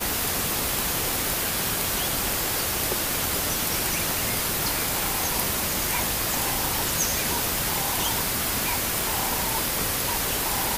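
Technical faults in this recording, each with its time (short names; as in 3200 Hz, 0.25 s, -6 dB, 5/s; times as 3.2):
crackle 68/s -29 dBFS
9.01 pop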